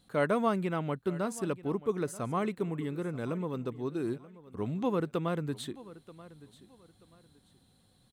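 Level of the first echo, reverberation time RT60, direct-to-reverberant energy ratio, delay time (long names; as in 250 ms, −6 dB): −18.5 dB, no reverb audible, no reverb audible, 932 ms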